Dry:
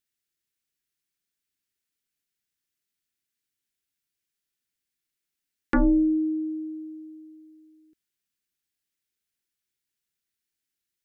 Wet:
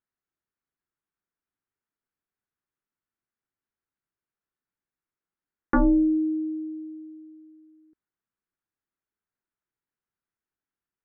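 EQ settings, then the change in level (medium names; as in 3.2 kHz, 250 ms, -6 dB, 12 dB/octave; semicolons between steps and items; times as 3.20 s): resonant low-pass 1.2 kHz, resonance Q 1.7; 0.0 dB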